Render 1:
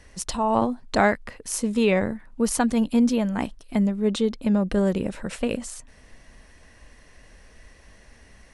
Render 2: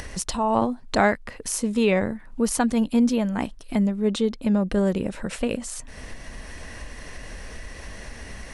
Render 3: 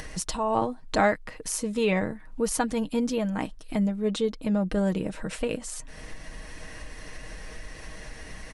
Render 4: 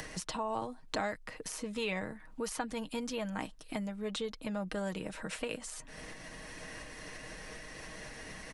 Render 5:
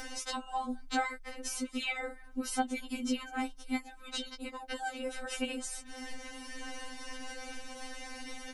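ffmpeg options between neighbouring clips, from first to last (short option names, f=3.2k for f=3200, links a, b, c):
-af "acompressor=mode=upward:threshold=-24dB:ratio=2.5"
-af "aecho=1:1:6.4:0.45,volume=-3.5dB"
-filter_complex "[0:a]acrossover=split=110|710|3900[a][b][c][d];[a]acompressor=threshold=-51dB:ratio=4[e];[b]acompressor=threshold=-38dB:ratio=4[f];[c]acompressor=threshold=-35dB:ratio=4[g];[d]acompressor=threshold=-42dB:ratio=4[h];[e][f][g][h]amix=inputs=4:normalize=0,volume=-2dB"
-af "afftfilt=real='re*3.46*eq(mod(b,12),0)':imag='im*3.46*eq(mod(b,12),0)':win_size=2048:overlap=0.75,volume=5.5dB"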